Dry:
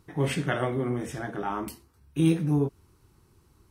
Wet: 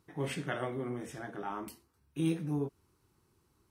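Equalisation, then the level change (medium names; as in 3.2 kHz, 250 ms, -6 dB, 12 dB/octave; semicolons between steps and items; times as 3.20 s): bass shelf 90 Hz -10.5 dB; -7.5 dB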